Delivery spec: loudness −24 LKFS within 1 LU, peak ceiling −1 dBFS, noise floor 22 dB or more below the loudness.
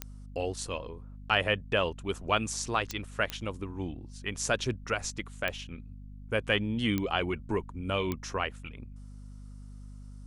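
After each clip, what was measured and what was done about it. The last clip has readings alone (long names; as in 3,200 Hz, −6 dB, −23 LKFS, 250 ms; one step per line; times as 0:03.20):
number of clicks 6; mains hum 50 Hz; hum harmonics up to 250 Hz; level of the hum −43 dBFS; integrated loudness −32.0 LKFS; sample peak −9.5 dBFS; target loudness −24.0 LKFS
→ click removal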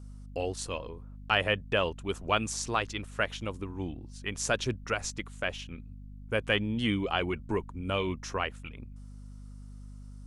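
number of clicks 0; mains hum 50 Hz; hum harmonics up to 250 Hz; level of the hum −43 dBFS
→ mains-hum notches 50/100/150/200/250 Hz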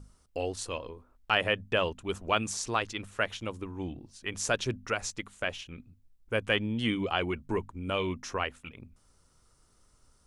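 mains hum none found; integrated loudness −32.0 LKFS; sample peak −9.5 dBFS; target loudness −24.0 LKFS
→ level +8 dB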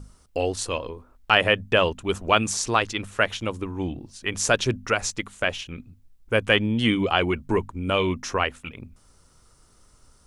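integrated loudness −24.0 LKFS; sample peak −1.5 dBFS; background noise floor −58 dBFS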